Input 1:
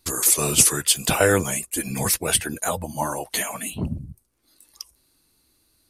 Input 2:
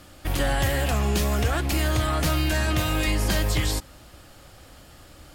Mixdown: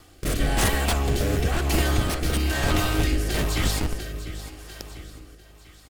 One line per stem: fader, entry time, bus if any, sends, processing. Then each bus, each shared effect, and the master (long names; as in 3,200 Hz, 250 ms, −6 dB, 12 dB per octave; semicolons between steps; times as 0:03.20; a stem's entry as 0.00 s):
−1.0 dB, 0.00 s, no send, no echo send, notch filter 6,800 Hz, Q 25; automatic gain control gain up to 8 dB; comparator with hysteresis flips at −13.5 dBFS
+2.0 dB, 0.00 s, no send, echo send −9.5 dB, lower of the sound and its delayed copy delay 2.6 ms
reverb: not used
echo: repeating echo 697 ms, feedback 39%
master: rotating-speaker cabinet horn 1 Hz